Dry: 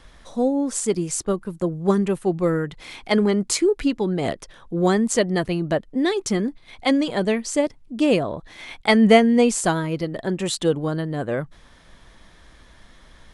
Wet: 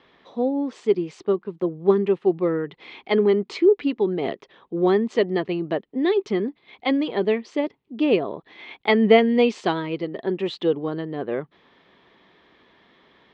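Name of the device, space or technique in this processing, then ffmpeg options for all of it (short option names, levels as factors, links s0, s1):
kitchen radio: -filter_complex "[0:a]highpass=220,equalizer=f=400:t=q:w=4:g=7,equalizer=f=590:t=q:w=4:g=-4,equalizer=f=1500:t=q:w=4:g=-6,lowpass=f=3600:w=0.5412,lowpass=f=3600:w=1.3066,asettb=1/sr,asplit=3[s0][s1][s2];[s0]atrim=end=9.184[s3];[s1]atrim=start=9.18:end=9.98,asetpts=PTS-STARTPTS,afade=t=in:d=0.004:c=qsin,afade=t=out:st=0.796:d=0.004:c=qsin,equalizer=f=4700:w=0.46:g=5.5[s4];[s2]atrim=start=9.976[s5];[s3][s4]acrossfade=d=0.004:c1=hsin:c2=qsin[s6];[s6][s5]acrossfade=d=0.004:c1=qsin:c2=hsin,volume=0.841"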